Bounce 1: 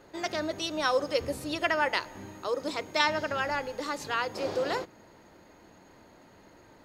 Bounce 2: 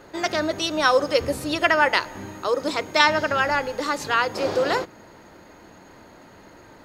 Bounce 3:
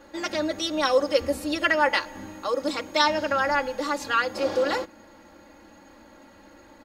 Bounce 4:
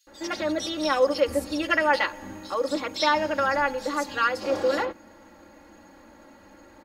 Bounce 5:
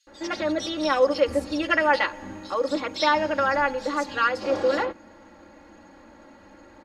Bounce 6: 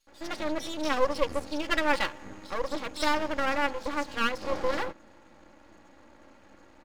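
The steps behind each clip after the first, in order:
peaking EQ 1.4 kHz +2.5 dB; trim +7.5 dB
comb 3.6 ms, depth 97%; trim -6 dB
bands offset in time highs, lows 70 ms, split 3.6 kHz
distance through air 57 m; trim +1.5 dB
half-wave rectifier; trim -2 dB

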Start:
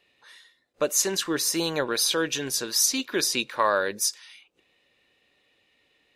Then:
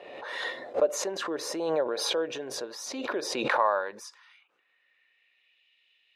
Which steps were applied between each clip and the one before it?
band-pass sweep 610 Hz -> 2.9 kHz, 3.25–5.68 s; swell ahead of each attack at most 35 dB/s; trim +2.5 dB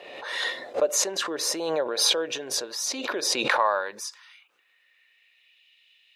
treble shelf 2.3 kHz +11.5 dB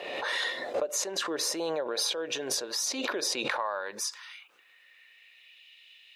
hum notches 60/120 Hz; compression 6:1, threshold -34 dBFS, peak gain reduction 15.5 dB; trim +5.5 dB

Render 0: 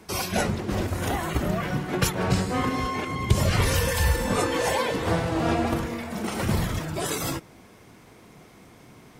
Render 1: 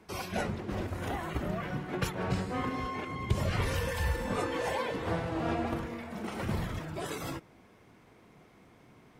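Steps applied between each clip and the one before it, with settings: tone controls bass -1 dB, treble -8 dB; trim -7.5 dB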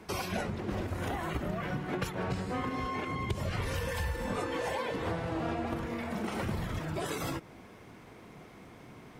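compression 4:1, threshold -39 dBFS, peak gain reduction 14.5 dB; trim +7 dB

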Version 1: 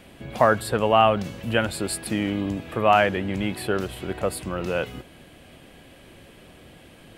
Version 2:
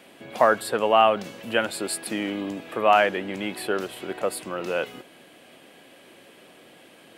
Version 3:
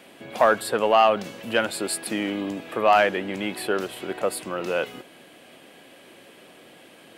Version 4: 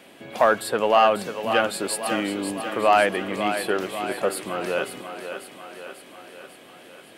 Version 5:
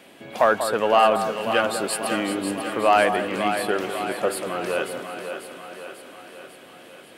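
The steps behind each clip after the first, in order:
high-pass 280 Hz 12 dB/octave
saturation -8 dBFS, distortion -20 dB; trim +1.5 dB
thinning echo 544 ms, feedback 60%, high-pass 210 Hz, level -8.5 dB
echo whose repeats swap between lows and highs 190 ms, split 1.5 kHz, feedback 66%, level -8.5 dB

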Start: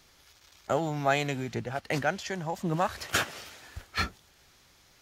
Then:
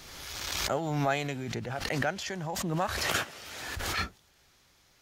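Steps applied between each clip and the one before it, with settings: swell ahead of each attack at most 30 dB/s; trim -3.5 dB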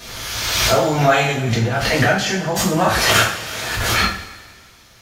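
two-slope reverb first 0.46 s, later 1.8 s, from -17 dB, DRR -7 dB; trim +7.5 dB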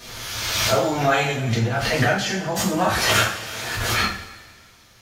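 flange 0.51 Hz, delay 8.2 ms, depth 1.7 ms, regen -47%

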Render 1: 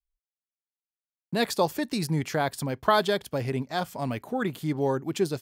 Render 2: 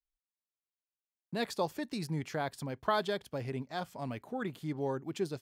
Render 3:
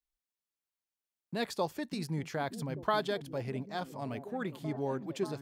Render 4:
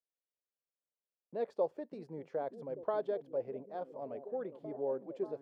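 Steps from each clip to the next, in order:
treble shelf 9.4 kHz -8 dB; trim -8.5 dB
repeats whose band climbs or falls 587 ms, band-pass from 190 Hz, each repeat 0.7 oct, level -6.5 dB
band-pass filter 510 Hz, Q 3.4; trim +4 dB

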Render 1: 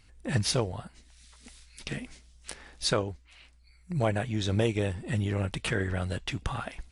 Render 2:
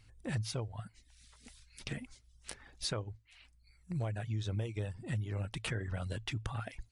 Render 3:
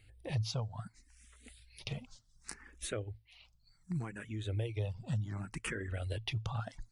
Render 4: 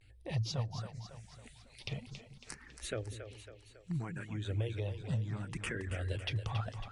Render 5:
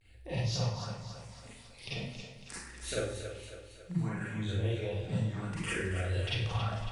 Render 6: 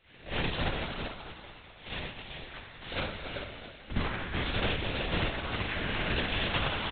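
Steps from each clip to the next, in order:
reverb removal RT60 0.55 s; peaking EQ 110 Hz +12.5 dB 0.27 oct; compression 6:1, threshold -29 dBFS, peak gain reduction 12.5 dB; trim -4.5 dB
barber-pole phaser +0.67 Hz; trim +2.5 dB
vibrato 0.43 Hz 48 cents; low-pass 8.6 kHz 12 dB/octave; two-band feedback delay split 360 Hz, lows 195 ms, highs 276 ms, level -9 dB
Schroeder reverb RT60 0.61 s, combs from 33 ms, DRR -8 dB; trim -3.5 dB
formants flattened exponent 0.3; delay 386 ms -6 dB; LPC vocoder at 8 kHz whisper; trim +2.5 dB

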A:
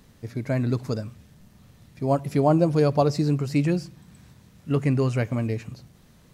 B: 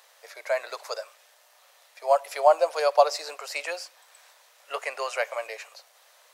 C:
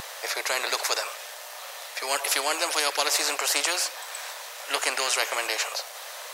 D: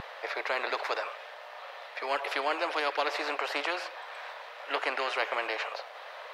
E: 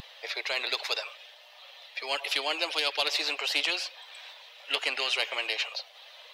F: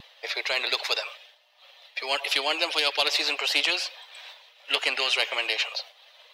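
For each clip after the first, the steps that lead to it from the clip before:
steep high-pass 550 Hz 48 dB/octave; trim +5 dB
spectrum-flattening compressor 4:1
distance through air 380 m
expander on every frequency bin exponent 1.5; resonant high shelf 2.2 kHz +12 dB, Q 1.5; saturation -15 dBFS, distortion -18 dB
expander -43 dBFS; trim +4 dB

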